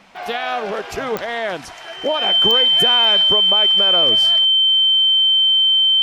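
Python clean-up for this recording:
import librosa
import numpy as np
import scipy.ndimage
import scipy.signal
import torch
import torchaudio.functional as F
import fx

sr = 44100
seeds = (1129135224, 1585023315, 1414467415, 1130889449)

y = fx.fix_declick_ar(x, sr, threshold=10.0)
y = fx.notch(y, sr, hz=3100.0, q=30.0)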